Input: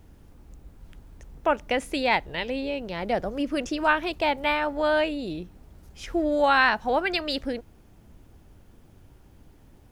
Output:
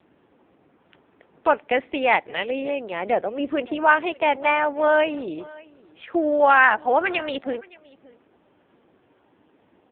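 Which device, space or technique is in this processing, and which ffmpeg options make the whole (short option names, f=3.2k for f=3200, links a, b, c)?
satellite phone: -af "highpass=340,lowpass=3.2k,aecho=1:1:571:0.0708,volume=6dB" -ar 8000 -c:a libopencore_amrnb -b:a 5900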